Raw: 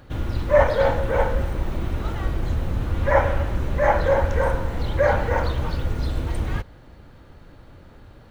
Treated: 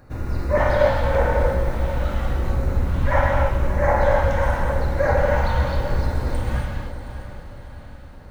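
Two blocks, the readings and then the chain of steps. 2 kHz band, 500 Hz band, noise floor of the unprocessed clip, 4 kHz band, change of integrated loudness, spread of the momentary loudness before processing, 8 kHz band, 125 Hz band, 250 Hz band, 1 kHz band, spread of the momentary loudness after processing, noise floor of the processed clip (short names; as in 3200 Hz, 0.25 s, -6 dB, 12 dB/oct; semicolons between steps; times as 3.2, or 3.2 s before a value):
+1.5 dB, +0.5 dB, -47 dBFS, 0.0 dB, +1.5 dB, 9 LU, n/a, +2.5 dB, +1.0 dB, +1.5 dB, 17 LU, -39 dBFS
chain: LFO notch square 0.87 Hz 420–3200 Hz; diffused feedback echo 0.616 s, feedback 46%, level -11 dB; non-linear reverb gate 0.32 s flat, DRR -1.5 dB; gain -2 dB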